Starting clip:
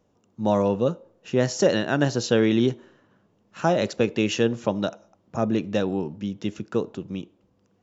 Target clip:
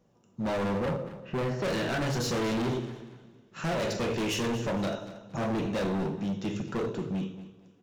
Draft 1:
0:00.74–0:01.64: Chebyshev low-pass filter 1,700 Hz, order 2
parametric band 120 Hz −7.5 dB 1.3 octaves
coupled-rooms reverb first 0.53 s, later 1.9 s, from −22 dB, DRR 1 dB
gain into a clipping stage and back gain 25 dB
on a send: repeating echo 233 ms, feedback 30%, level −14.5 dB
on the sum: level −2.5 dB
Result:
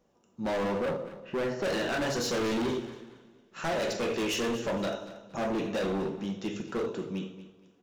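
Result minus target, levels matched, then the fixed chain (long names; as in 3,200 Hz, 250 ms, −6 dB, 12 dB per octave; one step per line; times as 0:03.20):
125 Hz band −6.5 dB
0:00.74–0:01.64: Chebyshev low-pass filter 1,700 Hz, order 2
parametric band 120 Hz +4 dB 1.3 octaves
coupled-rooms reverb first 0.53 s, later 1.9 s, from −22 dB, DRR 1 dB
gain into a clipping stage and back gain 25 dB
on a send: repeating echo 233 ms, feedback 30%, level −14.5 dB
on the sum: level −2.5 dB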